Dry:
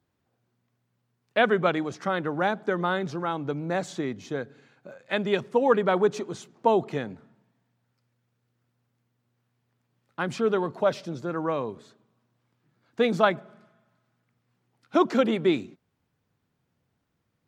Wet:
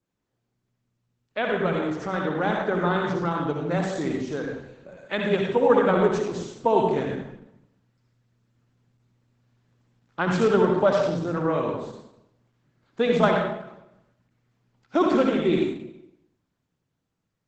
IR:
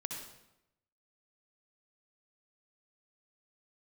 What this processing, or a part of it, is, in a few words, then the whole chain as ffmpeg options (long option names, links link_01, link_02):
speakerphone in a meeting room: -filter_complex "[0:a]adynamicequalizer=threshold=0.00398:dfrequency=5100:dqfactor=1:tfrequency=5100:tqfactor=1:attack=5:release=100:ratio=0.375:range=2:mode=cutabove:tftype=bell[link_01];[1:a]atrim=start_sample=2205[link_02];[link_01][link_02]afir=irnorm=-1:irlink=0,dynaudnorm=framelen=390:gausssize=11:maxgain=14.5dB,volume=-4.5dB" -ar 48000 -c:a libopus -b:a 12k